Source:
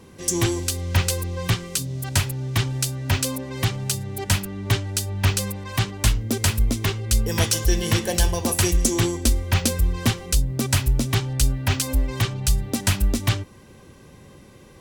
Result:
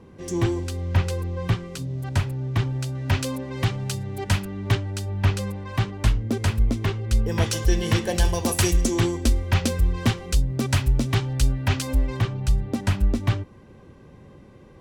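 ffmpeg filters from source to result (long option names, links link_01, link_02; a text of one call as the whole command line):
ffmpeg -i in.wav -af "asetnsamples=nb_out_samples=441:pad=0,asendcmd='2.95 lowpass f 2700;4.75 lowpass f 1600;7.46 lowpass f 3300;8.25 lowpass f 8600;8.81 lowpass f 3200;12.17 lowpass f 1300',lowpass=frequency=1200:poles=1" out.wav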